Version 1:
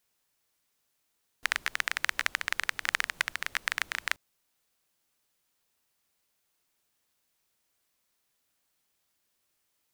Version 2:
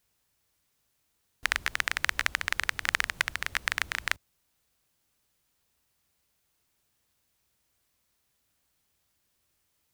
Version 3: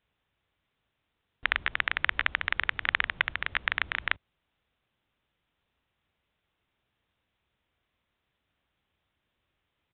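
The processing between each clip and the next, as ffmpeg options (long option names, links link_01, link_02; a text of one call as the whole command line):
ffmpeg -i in.wav -af "equalizer=frequency=63:width_type=o:width=2.5:gain=12.5,volume=1.5dB" out.wav
ffmpeg -i in.wav -af "aresample=8000,aresample=44100,volume=1dB" out.wav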